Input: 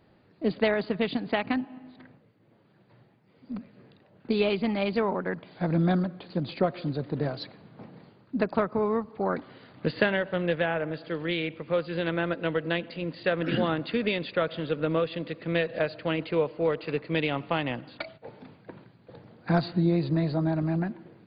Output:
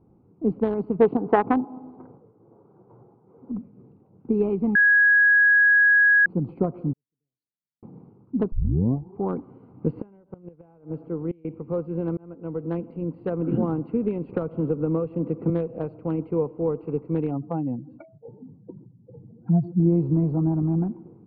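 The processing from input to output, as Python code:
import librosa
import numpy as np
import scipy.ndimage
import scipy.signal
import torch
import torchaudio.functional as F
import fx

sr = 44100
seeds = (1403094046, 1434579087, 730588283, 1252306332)

y = fx.band_shelf(x, sr, hz=780.0, db=11.0, octaves=2.5, at=(1.0, 3.52))
y = fx.cheby2_highpass(y, sr, hz=2600.0, order=4, stop_db=60, at=(6.93, 7.83))
y = fx.gate_flip(y, sr, shuts_db=-18.0, range_db=-25, at=(9.89, 11.45))
y = fx.band_squash(y, sr, depth_pct=100, at=(14.29, 15.5))
y = fx.spec_expand(y, sr, power=2.2, at=(17.31, 19.8))
y = fx.edit(y, sr, fx.bleep(start_s=4.75, length_s=1.51, hz=1660.0, db=-9.5),
    fx.tape_start(start_s=8.52, length_s=0.69),
    fx.fade_in_span(start_s=12.17, length_s=0.59), tone=tone)
y = fx.wiener(y, sr, points=25)
y = scipy.signal.sosfilt(scipy.signal.butter(2, 1100.0, 'lowpass', fs=sr, output='sos'), y)
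y = fx.peak_eq(y, sr, hz=610.0, db=-14.5, octaves=0.32)
y = F.gain(torch.from_numpy(y), 5.0).numpy()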